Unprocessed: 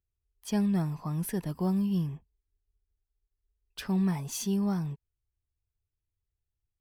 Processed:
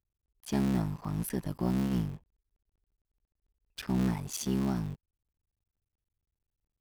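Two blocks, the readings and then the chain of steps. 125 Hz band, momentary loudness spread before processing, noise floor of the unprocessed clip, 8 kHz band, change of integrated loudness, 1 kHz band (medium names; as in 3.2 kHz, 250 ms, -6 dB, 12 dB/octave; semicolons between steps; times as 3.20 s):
-1.5 dB, 15 LU, under -85 dBFS, -1.5 dB, -2.0 dB, -0.5 dB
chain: cycle switcher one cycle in 3, muted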